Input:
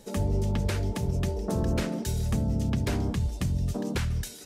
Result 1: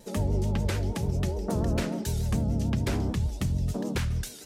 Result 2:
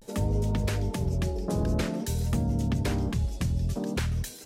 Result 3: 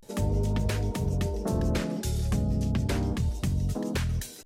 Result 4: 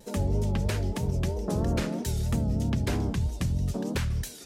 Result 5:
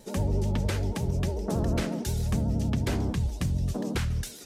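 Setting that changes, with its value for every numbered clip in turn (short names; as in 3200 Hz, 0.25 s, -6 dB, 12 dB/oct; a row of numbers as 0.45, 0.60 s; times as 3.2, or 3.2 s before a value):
vibrato, rate: 6.8, 0.51, 0.32, 3.1, 11 Hz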